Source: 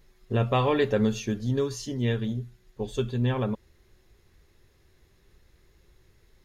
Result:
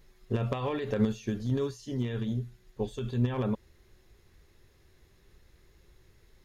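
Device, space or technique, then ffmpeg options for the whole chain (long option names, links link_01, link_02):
de-esser from a sidechain: -filter_complex "[0:a]asplit=2[link_01][link_02];[link_02]highpass=4200,apad=whole_len=284129[link_03];[link_01][link_03]sidechaincompress=threshold=-52dB:ratio=3:attack=0.71:release=53"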